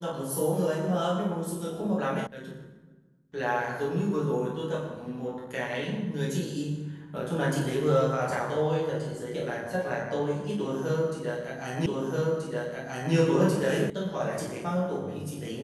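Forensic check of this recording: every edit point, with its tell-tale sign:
0:02.27: cut off before it has died away
0:11.86: the same again, the last 1.28 s
0:13.90: cut off before it has died away

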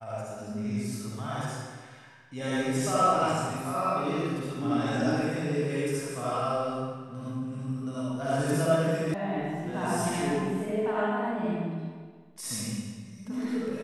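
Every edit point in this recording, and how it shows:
0:09.14: cut off before it has died away

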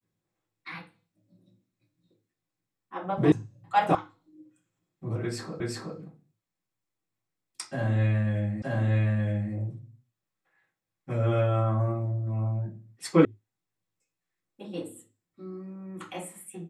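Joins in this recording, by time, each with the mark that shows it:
0:03.32: cut off before it has died away
0:03.95: cut off before it has died away
0:05.60: the same again, the last 0.37 s
0:08.62: the same again, the last 0.92 s
0:13.25: cut off before it has died away

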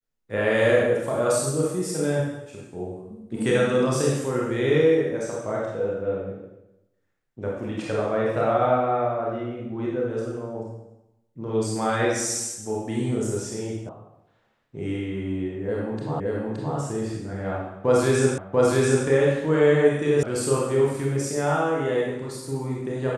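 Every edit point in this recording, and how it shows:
0:13.89: cut off before it has died away
0:16.20: the same again, the last 0.57 s
0:18.38: the same again, the last 0.69 s
0:20.23: cut off before it has died away

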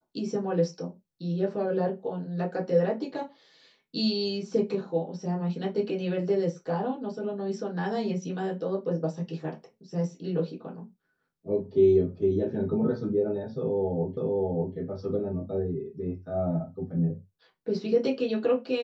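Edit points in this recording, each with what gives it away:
0:14.17: the same again, the last 0.59 s

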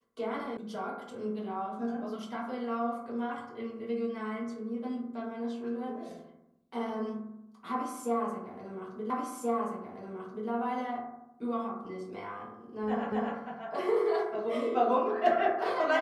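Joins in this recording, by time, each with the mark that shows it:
0:00.57: cut off before it has died away
0:09.10: the same again, the last 1.38 s
0:13.12: the same again, the last 0.25 s

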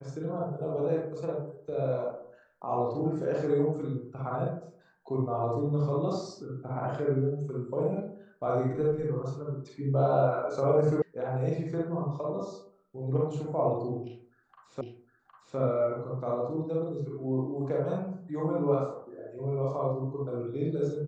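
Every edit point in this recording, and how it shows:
0:11.02: cut off before it has died away
0:14.81: the same again, the last 0.76 s

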